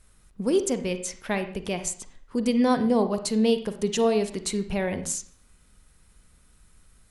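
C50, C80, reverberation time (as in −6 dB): 10.5 dB, 14.0 dB, 0.50 s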